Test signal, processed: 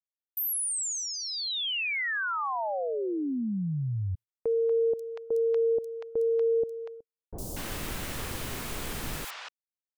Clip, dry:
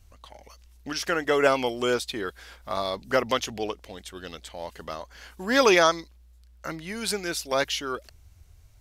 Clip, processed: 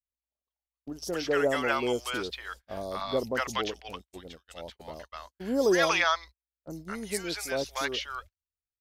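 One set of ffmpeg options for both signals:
-filter_complex "[0:a]acrossover=split=740|5300[a][b][c];[c]adelay=60[d];[b]adelay=240[e];[a][e][d]amix=inputs=3:normalize=0,agate=range=-47dB:threshold=-40dB:ratio=16:detection=peak,volume=-2.5dB"

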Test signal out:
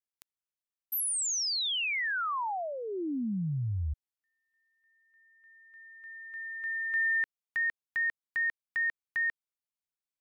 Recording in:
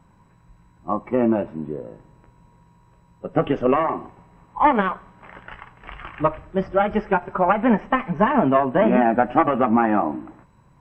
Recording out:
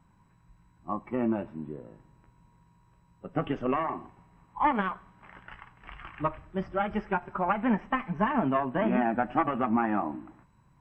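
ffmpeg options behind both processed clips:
-af "equalizer=f=510:w=1.6:g=-6.5,volume=-7dB"

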